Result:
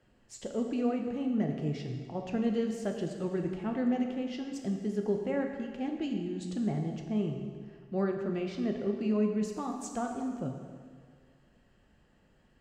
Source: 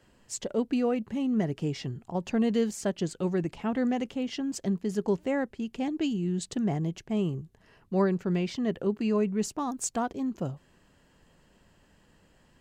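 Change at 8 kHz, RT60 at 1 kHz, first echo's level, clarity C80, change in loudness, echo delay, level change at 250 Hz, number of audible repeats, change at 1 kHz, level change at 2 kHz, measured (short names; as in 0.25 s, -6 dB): -11.0 dB, 1.8 s, none, 6.0 dB, -3.0 dB, none, -3.0 dB, none, -4.5 dB, -5.0 dB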